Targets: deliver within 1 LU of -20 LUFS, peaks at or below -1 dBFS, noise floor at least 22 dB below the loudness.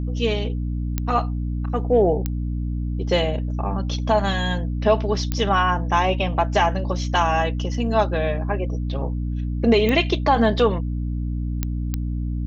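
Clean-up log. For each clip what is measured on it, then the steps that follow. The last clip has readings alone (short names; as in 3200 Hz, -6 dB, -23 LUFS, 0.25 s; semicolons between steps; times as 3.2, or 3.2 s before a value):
clicks 6; hum 60 Hz; harmonics up to 300 Hz; hum level -22 dBFS; loudness -22.5 LUFS; peak -4.5 dBFS; loudness target -20.0 LUFS
-> de-click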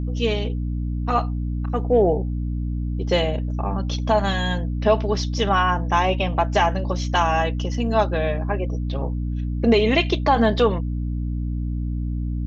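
clicks 0; hum 60 Hz; harmonics up to 300 Hz; hum level -22 dBFS
-> de-hum 60 Hz, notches 5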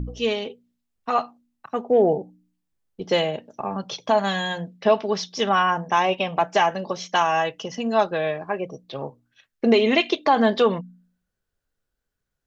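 hum none; loudness -22.5 LUFS; peak -5.0 dBFS; loudness target -20.0 LUFS
-> gain +2.5 dB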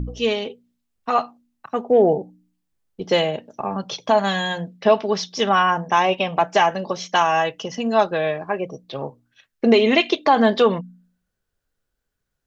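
loudness -20.0 LUFS; peak -2.5 dBFS; noise floor -78 dBFS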